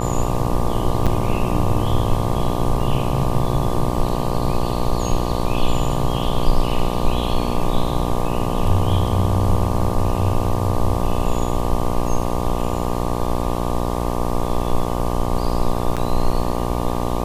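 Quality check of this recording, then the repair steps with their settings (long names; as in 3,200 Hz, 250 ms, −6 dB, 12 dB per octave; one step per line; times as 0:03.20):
mains buzz 60 Hz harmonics 20 −23 dBFS
0:01.06–0:01.07: drop-out 6.6 ms
0:15.96–0:15.97: drop-out 7 ms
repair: hum removal 60 Hz, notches 20
repair the gap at 0:01.06, 6.6 ms
repair the gap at 0:15.96, 7 ms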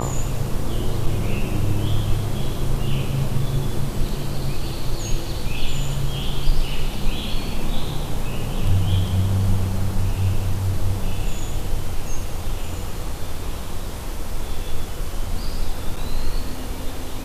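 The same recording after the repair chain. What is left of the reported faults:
none of them is left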